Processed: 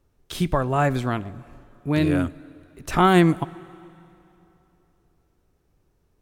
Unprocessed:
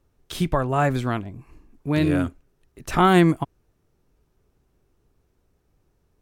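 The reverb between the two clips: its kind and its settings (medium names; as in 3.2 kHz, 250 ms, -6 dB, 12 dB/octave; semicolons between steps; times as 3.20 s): plate-style reverb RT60 3 s, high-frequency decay 0.85×, DRR 20 dB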